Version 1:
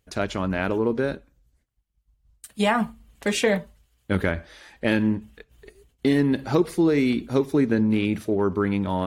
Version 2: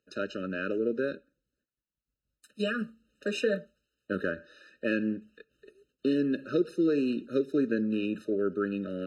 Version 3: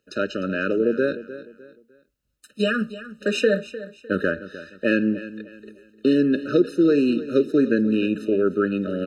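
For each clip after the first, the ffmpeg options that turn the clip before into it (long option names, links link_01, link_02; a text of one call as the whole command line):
ffmpeg -i in.wav -filter_complex "[0:a]aeval=exprs='0.422*(cos(1*acos(clip(val(0)/0.422,-1,1)))-cos(1*PI/2))+0.00596*(cos(6*acos(clip(val(0)/0.422,-1,1)))-cos(6*PI/2))':channel_layout=same,acrossover=split=190 6200:gain=0.0794 1 0.178[link_01][link_02][link_03];[link_01][link_02][link_03]amix=inputs=3:normalize=0,afftfilt=real='re*eq(mod(floor(b*sr/1024/610),2),0)':imag='im*eq(mod(floor(b*sr/1024/610),2),0)':win_size=1024:overlap=0.75,volume=-5dB" out.wav
ffmpeg -i in.wav -af "aecho=1:1:303|606|909:0.178|0.0587|0.0194,volume=8.5dB" out.wav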